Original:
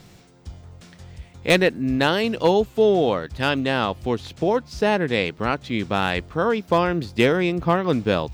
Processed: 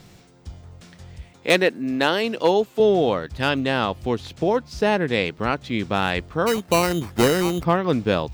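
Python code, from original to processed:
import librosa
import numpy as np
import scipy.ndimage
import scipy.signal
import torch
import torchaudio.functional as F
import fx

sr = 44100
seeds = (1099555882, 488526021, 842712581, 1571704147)

y = fx.highpass(x, sr, hz=230.0, slope=12, at=(1.33, 2.8))
y = fx.sample_hold(y, sr, seeds[0], rate_hz=3400.0, jitter_pct=0, at=(6.46, 7.63), fade=0.02)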